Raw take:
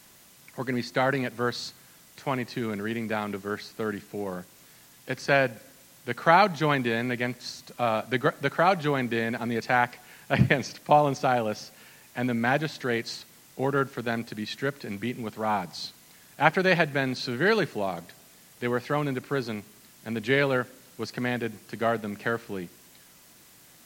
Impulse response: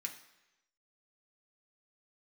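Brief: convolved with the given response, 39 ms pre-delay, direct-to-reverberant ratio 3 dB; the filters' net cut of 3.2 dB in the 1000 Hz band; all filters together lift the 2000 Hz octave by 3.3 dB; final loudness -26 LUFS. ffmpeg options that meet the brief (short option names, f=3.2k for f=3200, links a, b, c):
-filter_complex "[0:a]equalizer=f=1k:t=o:g=-6.5,equalizer=f=2k:t=o:g=6.5,asplit=2[a][b];[1:a]atrim=start_sample=2205,adelay=39[c];[b][c]afir=irnorm=-1:irlink=0,volume=-1.5dB[d];[a][d]amix=inputs=2:normalize=0,volume=-0.5dB"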